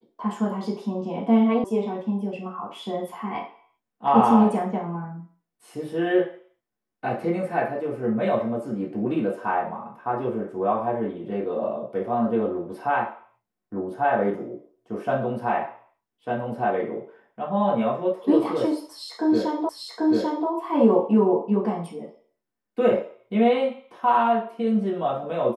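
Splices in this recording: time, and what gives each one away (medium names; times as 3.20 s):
1.64 s: sound stops dead
19.69 s: repeat of the last 0.79 s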